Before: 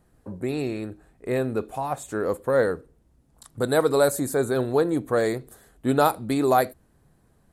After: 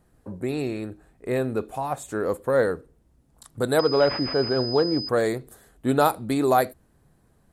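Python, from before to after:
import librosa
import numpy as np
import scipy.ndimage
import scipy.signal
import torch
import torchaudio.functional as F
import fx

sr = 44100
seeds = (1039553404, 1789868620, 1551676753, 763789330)

y = fx.pwm(x, sr, carrier_hz=5000.0, at=(3.79, 5.09))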